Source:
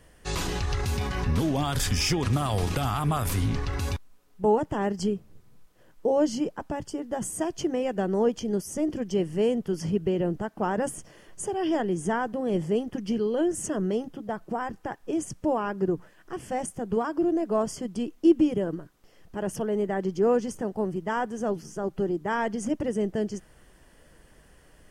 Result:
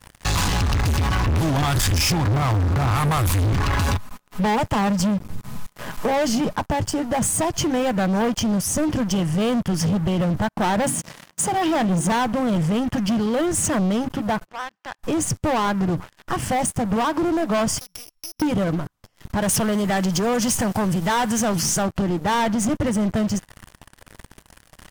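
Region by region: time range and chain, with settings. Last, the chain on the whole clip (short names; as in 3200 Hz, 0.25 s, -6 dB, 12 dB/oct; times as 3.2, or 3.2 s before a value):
2.12–2.91 median filter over 15 samples + HPF 43 Hz 24 dB/oct + high shelf 12000 Hz -11 dB
3.6–6.56 comb 4.8 ms, depth 42% + three-band squash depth 40%
10.84–12.12 resonant high-pass 170 Hz, resonance Q 1.9 + notches 50/100/150/200/250/300/350/400 Hz
14.46–14.99 compressor 16:1, threshold -34 dBFS + BPF 560–3400 Hz + bell 830 Hz -8 dB 1.9 oct
17.78–18.42 sample sorter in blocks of 8 samples + passive tone stack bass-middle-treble 10-0-10 + compressor 10:1, threshold -46 dBFS
19.42–21.83 high shelf 2400 Hz +12 dB + compressor 1.5:1, threshold -34 dBFS + sample leveller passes 1
whole clip: fifteen-band EQ 100 Hz +8 dB, 400 Hz -12 dB, 1000 Hz +4 dB; sample leveller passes 5; compressor 2:1, threshold -23 dBFS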